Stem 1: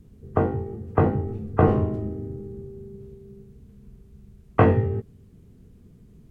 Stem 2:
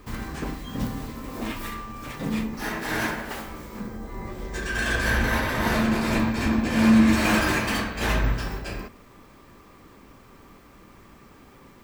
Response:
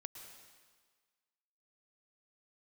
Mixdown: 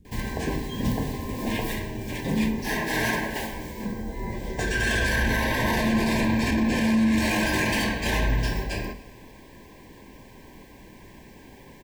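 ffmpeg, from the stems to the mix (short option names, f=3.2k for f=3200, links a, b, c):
-filter_complex "[0:a]acompressor=threshold=-27dB:ratio=6,volume=-3.5dB[a];[1:a]alimiter=limit=-18.5dB:level=0:latency=1:release=13,adelay=50,volume=1.5dB,asplit=2[b][c];[c]volume=-5dB[d];[2:a]atrim=start_sample=2205[e];[d][e]afir=irnorm=-1:irlink=0[f];[a][b][f]amix=inputs=3:normalize=0,asuperstop=centerf=1300:order=20:qfactor=2.9,bandreject=f=45.93:t=h:w=4,bandreject=f=91.86:t=h:w=4,bandreject=f=137.79:t=h:w=4,bandreject=f=183.72:t=h:w=4,bandreject=f=229.65:t=h:w=4,bandreject=f=275.58:t=h:w=4,bandreject=f=321.51:t=h:w=4,bandreject=f=367.44:t=h:w=4,bandreject=f=413.37:t=h:w=4,bandreject=f=459.3:t=h:w=4,bandreject=f=505.23:t=h:w=4,bandreject=f=551.16:t=h:w=4,bandreject=f=597.09:t=h:w=4,bandreject=f=643.02:t=h:w=4,bandreject=f=688.95:t=h:w=4,bandreject=f=734.88:t=h:w=4,bandreject=f=780.81:t=h:w=4,bandreject=f=826.74:t=h:w=4,bandreject=f=872.67:t=h:w=4,bandreject=f=918.6:t=h:w=4,bandreject=f=964.53:t=h:w=4,bandreject=f=1.01046k:t=h:w=4,bandreject=f=1.05639k:t=h:w=4,bandreject=f=1.10232k:t=h:w=4,bandreject=f=1.14825k:t=h:w=4,bandreject=f=1.19418k:t=h:w=4,bandreject=f=1.24011k:t=h:w=4,bandreject=f=1.28604k:t=h:w=4"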